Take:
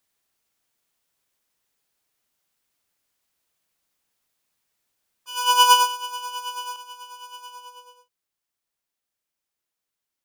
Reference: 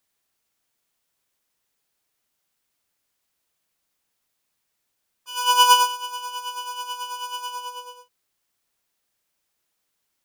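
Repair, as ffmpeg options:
-af "asetnsamples=n=441:p=0,asendcmd='6.76 volume volume 9dB',volume=0dB"

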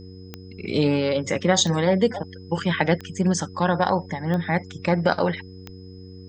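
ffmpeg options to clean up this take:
-af "adeclick=t=4,bandreject=f=93.1:t=h:w=4,bandreject=f=186.2:t=h:w=4,bandreject=f=279.3:t=h:w=4,bandreject=f=372.4:t=h:w=4,bandreject=f=465.5:t=h:w=4,bandreject=f=5.1k:w=30,agate=range=-21dB:threshold=-33dB"

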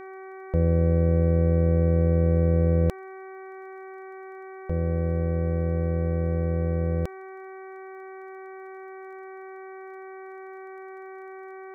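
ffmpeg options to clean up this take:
-af "adeclick=t=4,bandreject=f=380.9:t=h:w=4,bandreject=f=761.8:t=h:w=4,bandreject=f=1.1427k:t=h:w=4,bandreject=f=1.5236k:t=h:w=4,bandreject=f=1.9045k:t=h:w=4,bandreject=f=2.2854k:t=h:w=4"

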